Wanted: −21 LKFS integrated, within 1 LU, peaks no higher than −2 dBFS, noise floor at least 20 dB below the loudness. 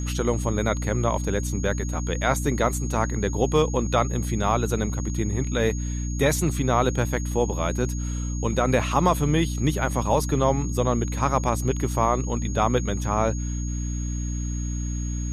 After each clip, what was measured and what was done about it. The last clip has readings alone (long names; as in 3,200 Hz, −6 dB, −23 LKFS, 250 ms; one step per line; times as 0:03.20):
mains hum 60 Hz; hum harmonics up to 300 Hz; level of the hum −25 dBFS; interfering tone 6,600 Hz; level of the tone −38 dBFS; integrated loudness −24.5 LKFS; sample peak −6.5 dBFS; target loudness −21.0 LKFS
→ hum removal 60 Hz, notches 5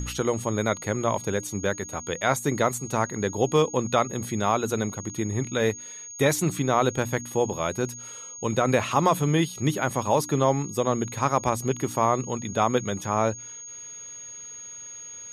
mains hum none found; interfering tone 6,600 Hz; level of the tone −38 dBFS
→ notch filter 6,600 Hz, Q 30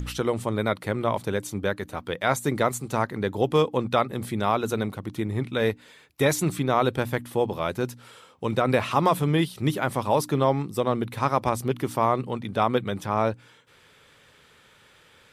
interfering tone none found; integrated loudness −25.5 LKFS; sample peak −8.0 dBFS; target loudness −21.0 LKFS
→ level +4.5 dB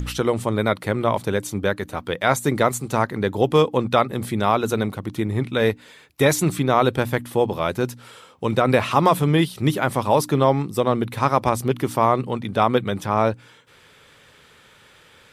integrated loudness −21.0 LKFS; sample peak −3.5 dBFS; background noise floor −52 dBFS